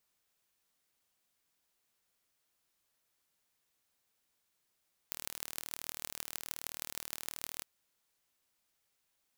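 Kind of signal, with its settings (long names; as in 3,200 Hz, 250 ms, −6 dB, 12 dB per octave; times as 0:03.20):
impulse train 38.8 per second, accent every 6, −9 dBFS 2.51 s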